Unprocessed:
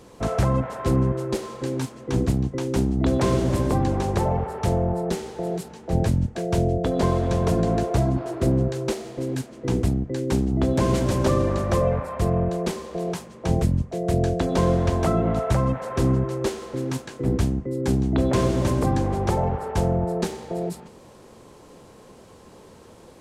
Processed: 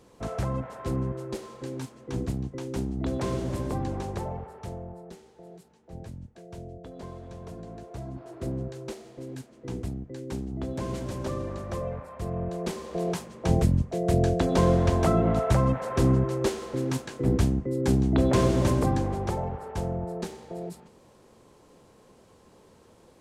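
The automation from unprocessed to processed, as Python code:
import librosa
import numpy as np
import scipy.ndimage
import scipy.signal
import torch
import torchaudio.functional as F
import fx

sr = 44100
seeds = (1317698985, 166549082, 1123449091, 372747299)

y = fx.gain(x, sr, db=fx.line((4.0, -8.5), (5.17, -20.0), (7.79, -20.0), (8.46, -11.5), (12.2, -11.5), (13.0, -1.0), (18.7, -1.0), (19.49, -8.5)))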